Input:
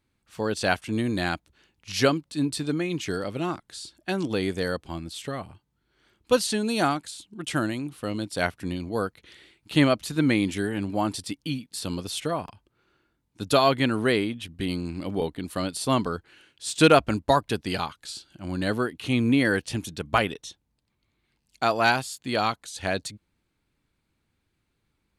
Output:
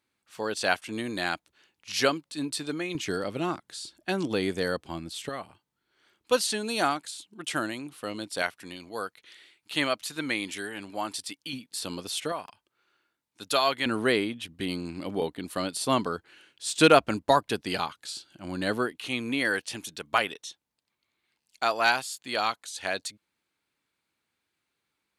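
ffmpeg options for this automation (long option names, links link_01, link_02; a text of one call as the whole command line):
ffmpeg -i in.wav -af "asetnsamples=nb_out_samples=441:pad=0,asendcmd='2.95 highpass f 170;5.29 highpass f 510;8.42 highpass f 1100;11.53 highpass f 410;12.32 highpass f 1100;13.86 highpass f 260;18.92 highpass f 780',highpass=frequency=530:poles=1" out.wav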